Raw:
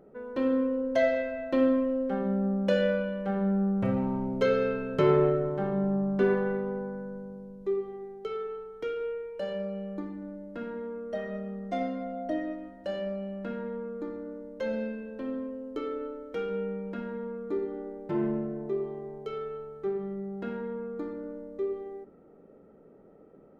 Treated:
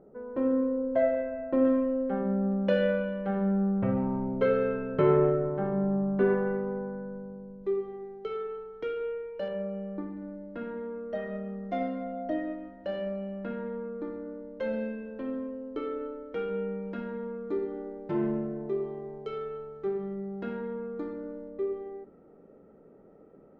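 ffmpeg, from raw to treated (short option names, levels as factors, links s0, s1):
-af "asetnsamples=n=441:p=0,asendcmd='1.65 lowpass f 2100;2.52 lowpass f 3100;3.78 lowpass f 2000;7.64 lowpass f 3800;9.48 lowpass f 2000;10.17 lowpass f 3200;16.83 lowpass f 5300;21.48 lowpass f 2900',lowpass=1200"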